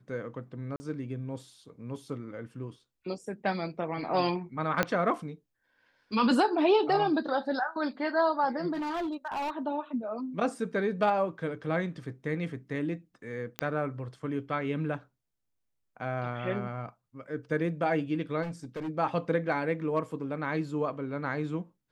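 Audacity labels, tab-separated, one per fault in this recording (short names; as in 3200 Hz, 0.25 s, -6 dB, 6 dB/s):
0.760000	0.800000	gap 40 ms
4.830000	4.830000	pop -11 dBFS
8.730000	9.510000	clipped -29.5 dBFS
13.590000	13.590000	pop -14 dBFS
18.420000	18.890000	clipped -32.5 dBFS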